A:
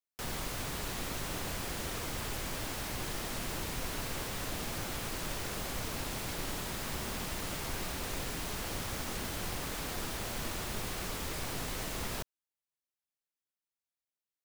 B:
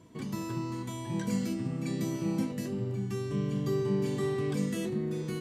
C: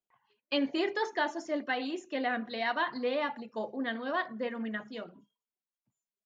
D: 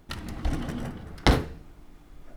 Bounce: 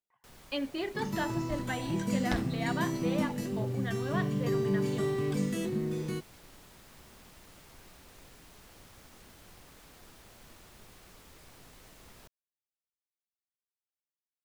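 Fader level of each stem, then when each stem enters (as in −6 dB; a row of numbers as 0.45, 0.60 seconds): −17.0, 0.0, −4.5, −14.5 decibels; 0.05, 0.80, 0.00, 1.05 seconds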